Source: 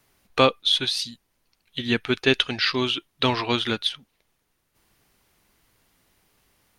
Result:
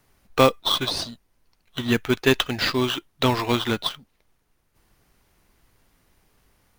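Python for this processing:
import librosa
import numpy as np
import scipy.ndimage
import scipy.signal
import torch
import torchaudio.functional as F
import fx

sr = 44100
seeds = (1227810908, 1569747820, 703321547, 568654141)

p1 = fx.low_shelf(x, sr, hz=72.0, db=8.5)
p2 = fx.sample_hold(p1, sr, seeds[0], rate_hz=4500.0, jitter_pct=0)
p3 = p1 + (p2 * librosa.db_to_amplitude(-6.5))
y = p3 * librosa.db_to_amplitude(-1.5)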